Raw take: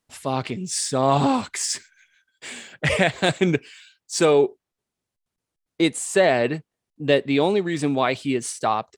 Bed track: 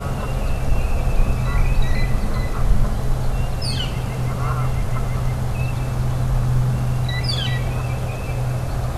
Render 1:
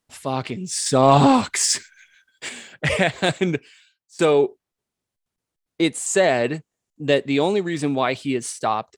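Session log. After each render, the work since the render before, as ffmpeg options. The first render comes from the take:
-filter_complex "[0:a]asettb=1/sr,asplit=3[a][b][c];[a]atrim=end=0.864[d];[b]atrim=start=0.86:end=2.49,asetpts=PTS-STARTPTS,afade=t=in:d=0.004:c=qsin,afade=t=out:st=1.626:d=0.004:c=qsin,acontrast=53[e];[c]atrim=start=2.486[f];[d][e]acrossfade=d=0.004:c1=hsin:c2=qsin[g];[g][f]acrossfade=d=0.004:c1=qsin:c2=hsin,asettb=1/sr,asplit=3[h][i][j];[h]atrim=end=6.064[k];[i]atrim=start=6.06:end=7.69,asetpts=PTS-STARTPTS,afade=t=in:d=0.004:c=qsin,afade=t=out:st=1.626:d=0.004:c=qsin,equalizer=f=7k:t=o:w=0.41:g=10[l];[j]atrim=start=7.686[m];[k][l]acrossfade=d=0.004:c1=hsin:c2=qsin[n];[n][m]acrossfade=d=0.004:c1=qsin:c2=hsin,asplit=2[o][p];[o]atrim=end=4.19,asetpts=PTS-STARTPTS,afade=t=out:st=3.3:d=0.89:silence=0.0668344[q];[p]atrim=start=4.19,asetpts=PTS-STARTPTS,afade=t=in:d=0.004:c=hsin:silence=0.0668344[r];[q][r]concat=n=2:v=0:a=1"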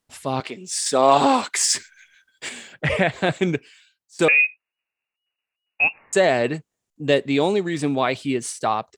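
-filter_complex "[0:a]asettb=1/sr,asplit=3[a][b][c];[a]atrim=end=0.404[d];[b]atrim=start=0.4:end=1.73,asetpts=PTS-STARTPTS,afade=t=in:d=0.004:c=qsin,afade=t=out:st=1.326:d=0.004:c=qsin,highpass=350[e];[c]atrim=start=1.726[f];[d][e]acrossfade=d=0.004:c1=hsin:c2=qsin[g];[g][f]acrossfade=d=0.004:c1=qsin:c2=hsin,asettb=1/sr,asplit=3[h][i][j];[h]atrim=end=2.734[k];[i]atrim=start=2.73:end=3.32,asetpts=PTS-STARTPTS,afade=t=in:d=0.004:c=qsin,afade=t=out:st=0.586:d=0.004:c=qsin,acrossover=split=3200[l][m];[m]acompressor=threshold=-42dB:ratio=4:attack=1:release=60[n];[l][n]amix=inputs=2:normalize=0[o];[j]atrim=start=3.316[p];[k][o]acrossfade=d=0.004:c1=hsin:c2=qsin[q];[q][p]acrossfade=d=0.004:c1=qsin:c2=hsin,asettb=1/sr,asplit=3[r][s][t];[r]atrim=end=4.284[u];[s]atrim=start=4.28:end=6.13,asetpts=PTS-STARTPTS,afade=t=in:d=0.004:c=qsin,afade=t=out:st=1.846:d=0.004:c=qsin,lowpass=f=2.5k:t=q:w=0.5098,lowpass=f=2.5k:t=q:w=0.6013,lowpass=f=2.5k:t=q:w=0.9,lowpass=f=2.5k:t=q:w=2.563,afreqshift=-2900[v];[t]atrim=start=6.126[w];[u][v]acrossfade=d=0.004:c1=hsin:c2=qsin[x];[x][w]acrossfade=d=0.004:c1=qsin:c2=hsin"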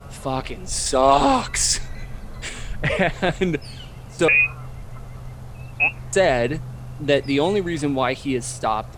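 -filter_complex "[1:a]volume=-14.5dB[a];[0:a][a]amix=inputs=2:normalize=0"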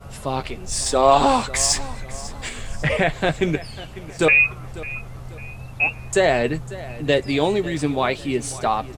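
-filter_complex "[0:a]asplit=2[a][b];[b]adelay=13,volume=-10.5dB[c];[a][c]amix=inputs=2:normalize=0,aecho=1:1:547|1094|1641:0.133|0.0507|0.0193"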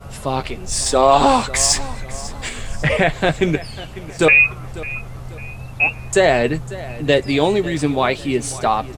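-af "volume=3.5dB,alimiter=limit=-1dB:level=0:latency=1"

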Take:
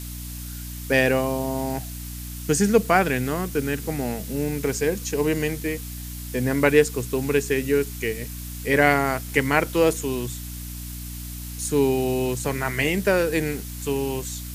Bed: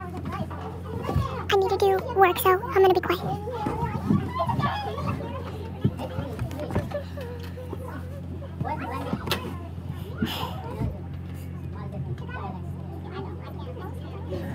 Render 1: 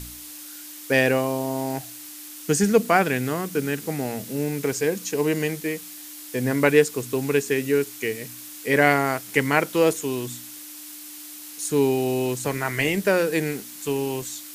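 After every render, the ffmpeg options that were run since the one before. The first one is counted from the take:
-af "bandreject=f=60:t=h:w=4,bandreject=f=120:t=h:w=4,bandreject=f=180:t=h:w=4,bandreject=f=240:t=h:w=4"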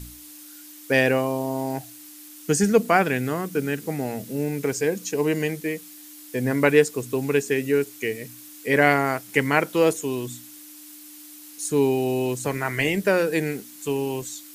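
-af "afftdn=nr=6:nf=-40"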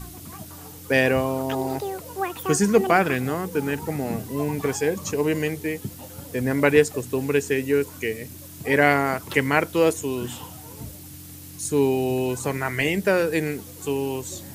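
-filter_complex "[1:a]volume=-9.5dB[a];[0:a][a]amix=inputs=2:normalize=0"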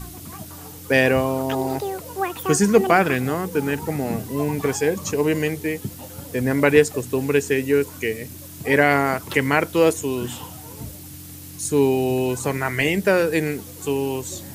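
-af "volume=2.5dB,alimiter=limit=-3dB:level=0:latency=1"

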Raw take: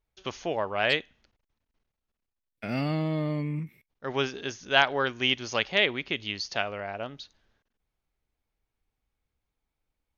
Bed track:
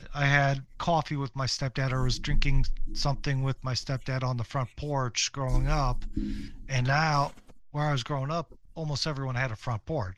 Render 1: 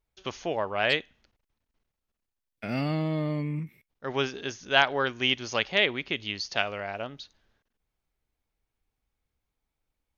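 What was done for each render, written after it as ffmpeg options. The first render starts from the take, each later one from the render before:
-filter_complex "[0:a]asettb=1/sr,asplit=3[a][b][c];[a]atrim=end=6.574[d];[b]atrim=start=6.57:end=7.02,asetpts=PTS-STARTPTS,afade=t=in:d=0.004:c=qsin,afade=t=out:st=0.446:d=0.004:c=qsin,highshelf=f=3.3k:g=9[e];[c]atrim=start=7.016[f];[d][e]acrossfade=d=0.004:c1=hsin:c2=qsin[g];[g][f]acrossfade=d=0.004:c1=qsin:c2=hsin"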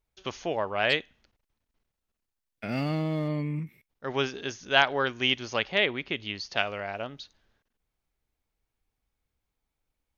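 -filter_complex "[0:a]asettb=1/sr,asplit=3[a][b][c];[a]atrim=end=2.724[d];[b]atrim=start=2.72:end=3.28,asetpts=PTS-STARTPTS,afade=t=in:d=0.004:c=qsin,afade=t=out:st=0.556:d=0.004:c=qsin,aeval=exprs='sgn(val(0))*max(abs(val(0))-0.00299,0)':c=same[e];[c]atrim=start=3.276[f];[d][e]acrossfade=d=0.004:c1=hsin:c2=qsin[g];[g][f]acrossfade=d=0.004:c1=qsin:c2=hsin,asettb=1/sr,asplit=3[h][i][j];[h]atrim=end=5.454[k];[i]atrim=start=5.45:end=6.57,asetpts=PTS-STARTPTS,afade=t=in:d=0.004:c=qsin,afade=t=out:st=1.116:d=0.004:c=qsin,lowpass=f=3.9k:p=1[l];[j]atrim=start=6.566[m];[k][l]acrossfade=d=0.004:c1=hsin:c2=qsin[n];[n][m]acrossfade=d=0.004:c1=qsin:c2=hsin"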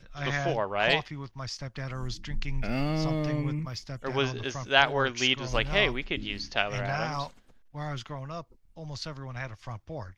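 -filter_complex "[1:a]volume=-7.5dB[a];[0:a][a]amix=inputs=2:normalize=0"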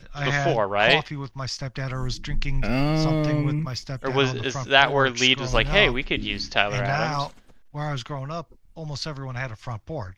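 -af "volume=6.5dB,alimiter=limit=-1dB:level=0:latency=1"

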